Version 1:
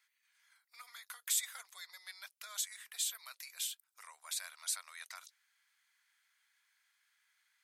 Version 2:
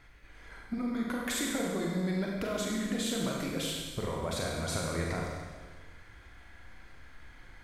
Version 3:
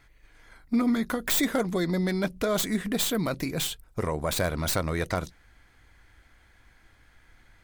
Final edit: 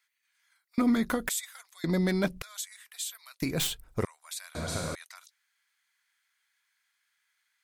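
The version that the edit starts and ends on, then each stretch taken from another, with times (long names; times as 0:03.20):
1
0:00.78–0:01.29: punch in from 3
0:01.84–0:02.42: punch in from 3
0:03.42–0:04.05: punch in from 3
0:04.55–0:04.95: punch in from 2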